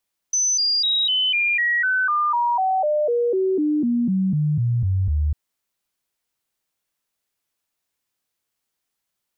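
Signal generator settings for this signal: stepped sine 6060 Hz down, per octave 3, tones 20, 0.25 s, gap 0.00 s -17 dBFS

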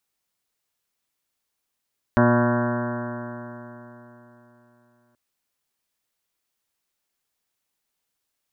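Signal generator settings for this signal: stretched partials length 2.98 s, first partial 119 Hz, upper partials 3.5/-3.5/-13.5/0/-9.5/-10/-6/-7/-16/-8.5/-7.5/-13/-18 dB, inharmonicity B 0.0011, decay 3.61 s, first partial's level -20 dB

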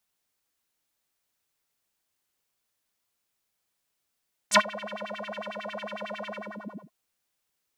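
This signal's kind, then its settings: synth patch with filter wobble G#3, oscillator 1 square, oscillator 2 level -16.5 dB, sub -19 dB, filter bandpass, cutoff 360 Hz, Q 5.8, filter envelope 3.5 oct, filter decay 0.11 s, filter sustain 50%, attack 35 ms, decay 0.08 s, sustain -24 dB, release 0.62 s, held 1.77 s, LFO 11 Hz, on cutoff 1.4 oct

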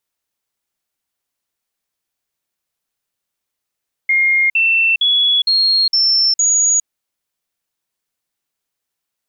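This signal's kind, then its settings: stepped sine 2130 Hz up, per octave 3, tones 6, 0.41 s, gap 0.05 s -10.5 dBFS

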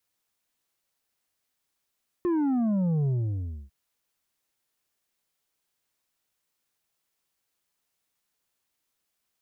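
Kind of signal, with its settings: sub drop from 360 Hz, over 1.45 s, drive 6 dB, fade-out 0.63 s, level -23 dB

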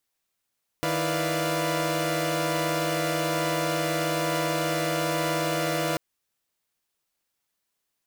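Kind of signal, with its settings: chord D#3/E4/B4/D5/F5 saw, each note -28.5 dBFS 5.14 s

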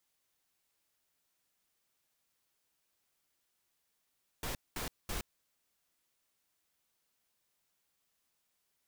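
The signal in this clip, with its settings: noise bursts pink, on 0.12 s, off 0.21 s, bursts 3, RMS -38 dBFS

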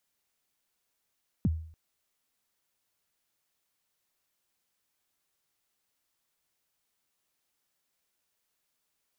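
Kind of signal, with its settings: kick drum length 0.29 s, from 260 Hz, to 80 Hz, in 33 ms, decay 0.54 s, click off, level -20 dB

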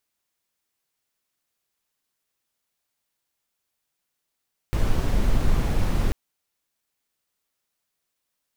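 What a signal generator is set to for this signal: noise brown, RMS -19.5 dBFS 1.39 s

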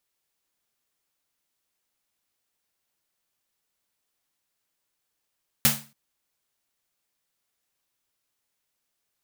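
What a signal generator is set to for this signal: snare drum length 0.28 s, tones 140 Hz, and 220 Hz, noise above 500 Hz, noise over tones 8.5 dB, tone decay 0.37 s, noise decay 0.32 s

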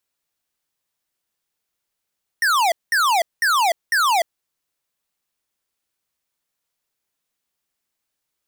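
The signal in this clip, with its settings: burst of laser zaps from 1900 Hz, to 640 Hz, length 0.30 s square, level -17 dB, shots 4, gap 0.20 s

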